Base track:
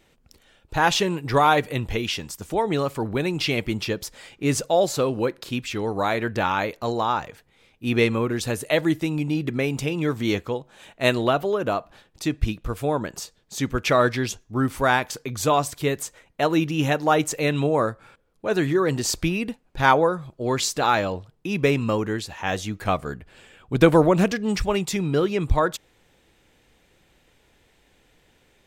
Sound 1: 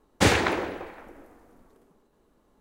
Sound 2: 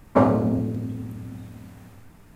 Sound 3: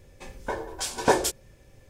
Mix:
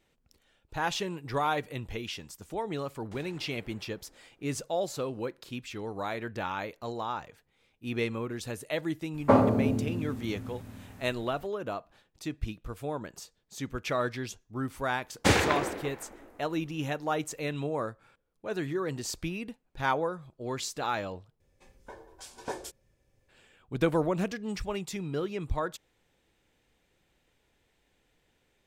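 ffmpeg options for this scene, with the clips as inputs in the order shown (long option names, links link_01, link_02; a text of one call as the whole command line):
ffmpeg -i bed.wav -i cue0.wav -i cue1.wav -i cue2.wav -filter_complex "[1:a]asplit=2[link_01][link_02];[0:a]volume=-11dB[link_03];[link_01]acompressor=threshold=-35dB:ratio=6:attack=3.2:release=140:knee=1:detection=peak[link_04];[2:a]equalizer=frequency=150:width=2.4:gain=-7[link_05];[link_03]asplit=2[link_06][link_07];[link_06]atrim=end=21.404[link_08];[3:a]atrim=end=1.89,asetpts=PTS-STARTPTS,volume=-16dB[link_09];[link_07]atrim=start=23.286[link_10];[link_04]atrim=end=2.6,asetpts=PTS-STARTPTS,volume=-16dB,afade=type=in:duration=0.004:curve=hsin,afade=type=out:start_time=2.596:duration=0.004:curve=hsin,adelay=2910[link_11];[link_05]atrim=end=2.35,asetpts=PTS-STARTPTS,volume=-2.5dB,afade=type=in:duration=0.02,afade=type=out:start_time=2.33:duration=0.02,adelay=9130[link_12];[link_02]atrim=end=2.6,asetpts=PTS-STARTPTS,volume=-3dB,afade=type=in:duration=0.004:curve=hsin,afade=type=out:start_time=2.596:duration=0.004:curve=hsin,adelay=15040[link_13];[link_08][link_09]acrossfade=duration=0.004:curve1=hsin:curve2=hsin[link_14];[link_14][link_10]acrossfade=duration=0.004:curve1=hsin:curve2=hsin[link_15];[link_15][link_11][link_12][link_13]amix=inputs=4:normalize=0" out.wav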